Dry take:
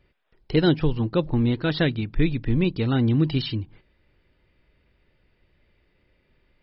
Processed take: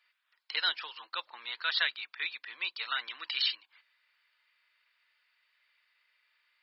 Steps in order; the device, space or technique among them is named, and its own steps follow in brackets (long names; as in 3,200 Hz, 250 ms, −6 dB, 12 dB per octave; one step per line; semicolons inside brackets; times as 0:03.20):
headphones lying on a table (high-pass filter 1,100 Hz 24 dB per octave; parametric band 4,300 Hz +4.5 dB 0.3 octaves)
notch filter 810 Hz, Q 13
0:02.84–0:03.51: dynamic equaliser 2,000 Hz, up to +4 dB, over −46 dBFS, Q 1.1